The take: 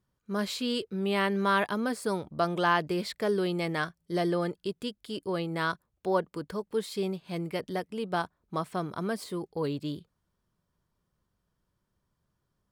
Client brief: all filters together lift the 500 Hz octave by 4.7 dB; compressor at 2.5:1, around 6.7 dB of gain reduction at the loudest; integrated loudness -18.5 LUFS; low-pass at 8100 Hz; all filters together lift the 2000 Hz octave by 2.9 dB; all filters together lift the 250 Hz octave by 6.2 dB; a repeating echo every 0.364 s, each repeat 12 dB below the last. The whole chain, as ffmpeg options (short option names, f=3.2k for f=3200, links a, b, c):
-af "lowpass=8.1k,equalizer=f=250:t=o:g=8,equalizer=f=500:t=o:g=3,equalizer=f=2k:t=o:g=3.5,acompressor=threshold=-28dB:ratio=2.5,aecho=1:1:364|728|1092:0.251|0.0628|0.0157,volume=12.5dB"